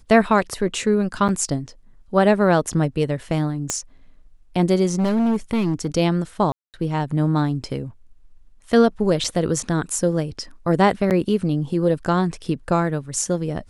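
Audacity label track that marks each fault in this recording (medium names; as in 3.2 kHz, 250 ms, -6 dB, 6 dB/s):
1.280000	1.290000	dropout 7.7 ms
3.700000	3.700000	pop -8 dBFS
4.950000	5.870000	clipped -16.5 dBFS
6.520000	6.740000	dropout 218 ms
9.240000	9.240000	dropout 4.5 ms
11.100000	11.110000	dropout 8.5 ms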